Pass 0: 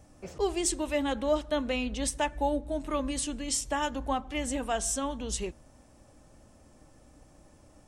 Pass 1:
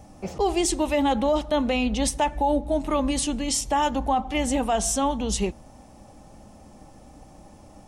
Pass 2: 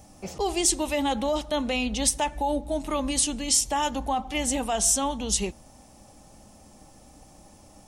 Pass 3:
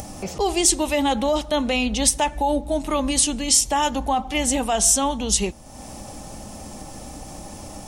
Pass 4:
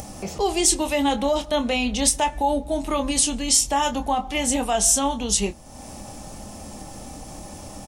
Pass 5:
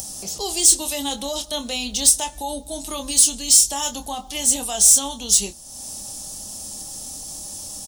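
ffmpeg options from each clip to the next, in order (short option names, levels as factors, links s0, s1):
-af "equalizer=f=200:t=o:w=0.33:g=7,equalizer=f=800:t=o:w=0.33:g=8,equalizer=f=1600:t=o:w=0.33:g=-5,equalizer=f=8000:t=o:w=0.33:g=-4,alimiter=limit=0.0841:level=0:latency=1:release=21,volume=2.37"
-af "highshelf=f=3100:g=10.5,volume=0.596"
-af "acompressor=mode=upward:threshold=0.0282:ratio=2.5,volume=1.78"
-filter_complex "[0:a]asplit=2[s0][s1];[s1]adelay=25,volume=0.355[s2];[s0][s2]amix=inputs=2:normalize=0,volume=0.841"
-af "aexciter=amount=3.1:drive=9.9:freq=3300,volume=0.422"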